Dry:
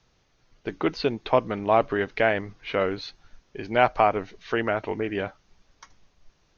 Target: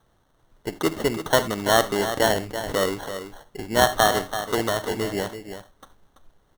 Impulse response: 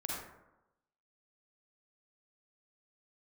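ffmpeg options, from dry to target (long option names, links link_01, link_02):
-filter_complex "[0:a]asplit=2[link_01][link_02];[1:a]atrim=start_sample=2205,afade=type=out:start_time=0.14:duration=0.01,atrim=end_sample=6615,highshelf=frequency=5100:gain=8.5[link_03];[link_02][link_03]afir=irnorm=-1:irlink=0,volume=-13dB[link_04];[link_01][link_04]amix=inputs=2:normalize=0,acrusher=samples=18:mix=1:aa=0.000001,aecho=1:1:334:0.316"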